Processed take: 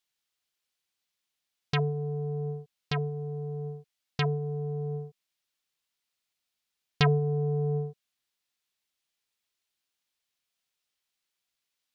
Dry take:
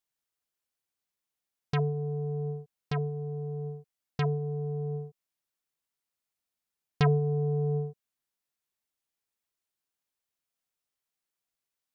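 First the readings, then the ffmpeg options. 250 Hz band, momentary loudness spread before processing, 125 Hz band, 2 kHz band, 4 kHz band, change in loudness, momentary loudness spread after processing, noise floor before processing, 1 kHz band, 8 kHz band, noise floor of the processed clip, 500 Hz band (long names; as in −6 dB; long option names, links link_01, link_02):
0.0 dB, 13 LU, 0.0 dB, +5.5 dB, +8.5 dB, +0.5 dB, 14 LU, below −85 dBFS, +1.5 dB, can't be measured, −85 dBFS, +0.5 dB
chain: -af "equalizer=frequency=3500:width_type=o:width=2:gain=9"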